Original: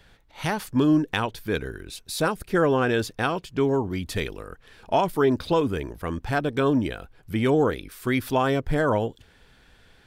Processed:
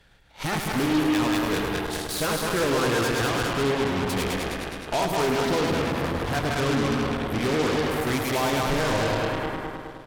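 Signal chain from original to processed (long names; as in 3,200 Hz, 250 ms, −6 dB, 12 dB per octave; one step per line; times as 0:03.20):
feedback delay that plays each chunk backwards 104 ms, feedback 77%, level −3 dB
soft clipping −15 dBFS, distortion −15 dB
harmonic generator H 8 −11 dB, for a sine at −15 dBFS
on a send: single-tap delay 104 ms −8 dB
on the sum: level −3 dB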